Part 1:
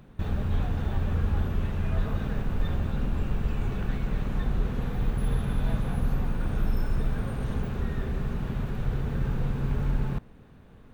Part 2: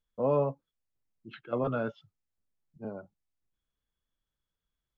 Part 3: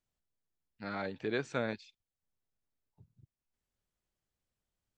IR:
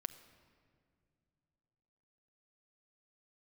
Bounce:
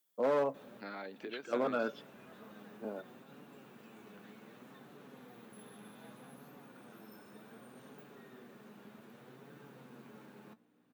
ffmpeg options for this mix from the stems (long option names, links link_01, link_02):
-filter_complex "[0:a]highshelf=frequency=8000:gain=10,flanger=delay=6.7:depth=3.3:regen=50:speed=0.65:shape=triangular,aeval=exprs='val(0)+0.00355*(sin(2*PI*60*n/s)+sin(2*PI*2*60*n/s)/2+sin(2*PI*3*60*n/s)/3+sin(2*PI*4*60*n/s)/4+sin(2*PI*5*60*n/s)/5)':channel_layout=same,adelay=350,volume=-12.5dB[link_01];[1:a]aemphasis=mode=production:type=75fm,volume=24dB,asoftclip=hard,volume=-24dB,volume=-2.5dB,asplit=2[link_02][link_03];[link_03]volume=-10dB[link_04];[2:a]acompressor=threshold=-41dB:ratio=6,volume=0.5dB,asplit=2[link_05][link_06];[link_06]apad=whole_len=497696[link_07];[link_01][link_07]sidechaincompress=threshold=-56dB:ratio=4:attack=7.5:release=182[link_08];[3:a]atrim=start_sample=2205[link_09];[link_04][link_09]afir=irnorm=-1:irlink=0[link_10];[link_08][link_02][link_05][link_10]amix=inputs=4:normalize=0,highpass=frequency=220:width=0.5412,highpass=frequency=220:width=1.3066"